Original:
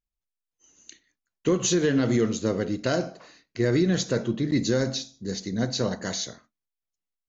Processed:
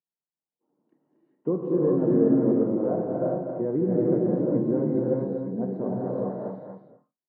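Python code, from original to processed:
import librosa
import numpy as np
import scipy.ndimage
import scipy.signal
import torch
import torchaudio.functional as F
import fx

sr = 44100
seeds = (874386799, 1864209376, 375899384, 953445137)

y = scipy.signal.sosfilt(scipy.signal.ellip(3, 1.0, 80, [150.0, 920.0], 'bandpass', fs=sr, output='sos'), x)
y = y + 10.0 ** (-6.0 / 20.0) * np.pad(y, (int(237 * sr / 1000.0), 0))[:len(y)]
y = fx.rev_gated(y, sr, seeds[0], gate_ms=440, shape='rising', drr_db=-3.5)
y = y * librosa.db_to_amplitude(-3.0)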